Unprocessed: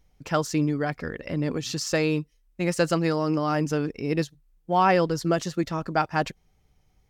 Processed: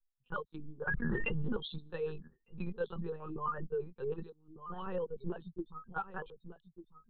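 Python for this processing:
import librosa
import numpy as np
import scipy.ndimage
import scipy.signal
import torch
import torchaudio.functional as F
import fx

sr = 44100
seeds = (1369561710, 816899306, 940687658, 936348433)

y = fx.bin_expand(x, sr, power=3.0)
y = fx.recorder_agc(y, sr, target_db=-20.0, rise_db_per_s=23.0, max_gain_db=30)
y = fx.peak_eq(y, sr, hz=990.0, db=-14.5, octaves=1.9, at=(4.19, 4.94), fade=0.02)
y = y + 10.0 ** (-12.0 / 20.0) * np.pad(y, (int(1198 * sr / 1000.0), 0))[:len(y)]
y = fx.quant_float(y, sr, bits=6)
y = fx.lowpass(y, sr, hz=2500.0, slope=12, at=(2.8, 3.5))
y = fx.spec_box(y, sr, start_s=4.31, length_s=0.21, low_hz=350.0, high_hz=1700.0, gain_db=-26)
y = fx.lpc_vocoder(y, sr, seeds[0], excitation='pitch_kept', order=8)
y = fx.low_shelf(y, sr, hz=460.0, db=-3.5)
y = fx.fixed_phaser(y, sr, hz=430.0, stages=8)
y = fx.env_flatten(y, sr, amount_pct=100, at=(0.87, 1.57))
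y = y * librosa.db_to_amplitude(-4.5)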